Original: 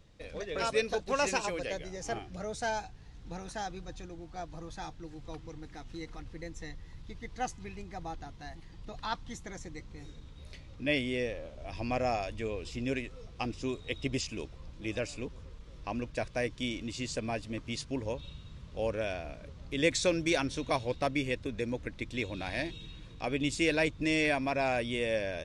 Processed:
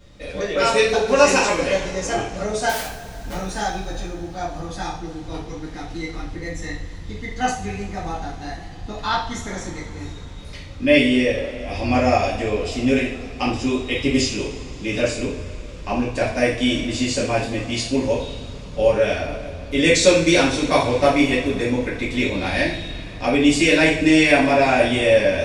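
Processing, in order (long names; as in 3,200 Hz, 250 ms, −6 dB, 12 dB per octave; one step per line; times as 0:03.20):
0:02.69–0:03.33: wrap-around overflow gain 37.5 dB
coupled-rooms reverb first 0.48 s, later 4.2 s, from −21 dB, DRR −7.5 dB
level +6 dB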